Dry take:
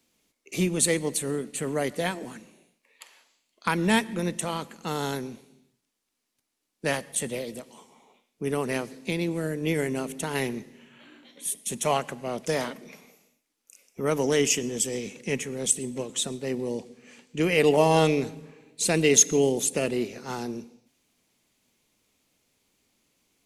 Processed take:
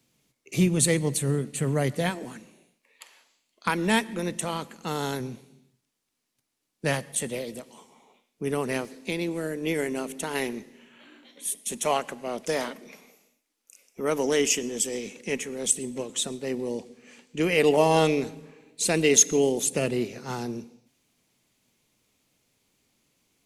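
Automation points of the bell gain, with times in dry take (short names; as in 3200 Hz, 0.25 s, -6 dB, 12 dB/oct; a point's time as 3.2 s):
bell 130 Hz 0.66 oct
+13.5 dB
from 2.1 s +2 dB
from 3.7 s -9 dB
from 4.31 s 0 dB
from 5.2 s +7.5 dB
from 7.16 s -0.5 dB
from 8.85 s -11 dB
from 15.65 s -4.5 dB
from 19.67 s +5 dB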